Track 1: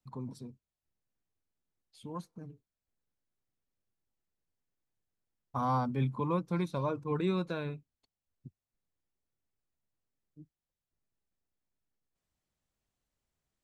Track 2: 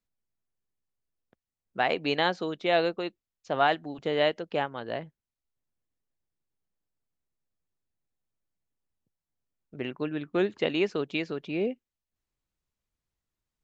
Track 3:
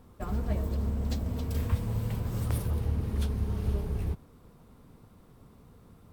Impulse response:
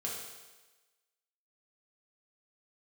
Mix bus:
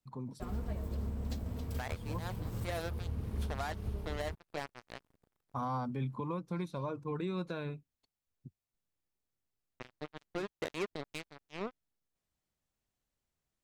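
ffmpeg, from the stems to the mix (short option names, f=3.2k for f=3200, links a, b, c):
-filter_complex "[0:a]volume=-1.5dB,asplit=2[a][b];[1:a]bandreject=f=2.9k:w=5.4,acrusher=bits=3:mix=0:aa=0.5,volume=-10dB[c];[2:a]aeval=exprs='sgn(val(0))*max(abs(val(0))-0.00355,0)':c=same,adelay=200,volume=-6dB[d];[b]apad=whole_len=601371[e];[c][e]sidechaincompress=threshold=-55dB:ratio=3:attack=9:release=105[f];[a][f][d]amix=inputs=3:normalize=0,alimiter=level_in=3.5dB:limit=-24dB:level=0:latency=1:release=205,volume=-3.5dB"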